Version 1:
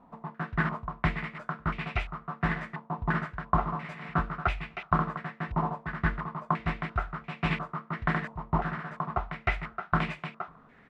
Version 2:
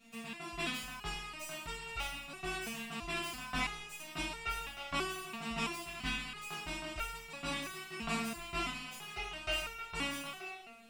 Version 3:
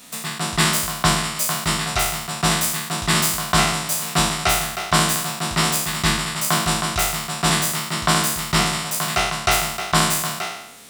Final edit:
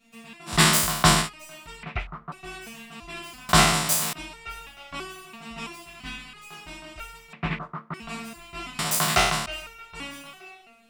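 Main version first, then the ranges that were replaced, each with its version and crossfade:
2
0:00.51–0:01.25: punch in from 3, crossfade 0.10 s
0:01.83–0:02.32: punch in from 1
0:03.49–0:04.13: punch in from 3
0:07.33–0:07.94: punch in from 1
0:08.79–0:09.46: punch in from 3

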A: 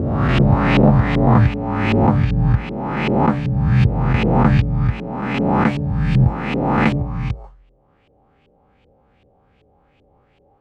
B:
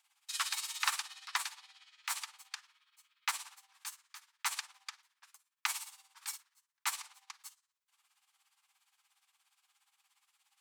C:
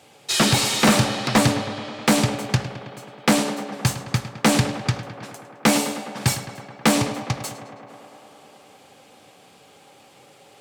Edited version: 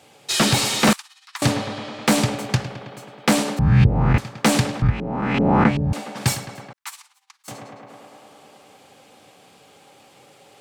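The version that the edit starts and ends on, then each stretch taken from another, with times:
C
0:00.93–0:01.42: punch in from B
0:03.59–0:04.18: punch in from A
0:04.82–0:05.93: punch in from A
0:06.73–0:07.48: punch in from B

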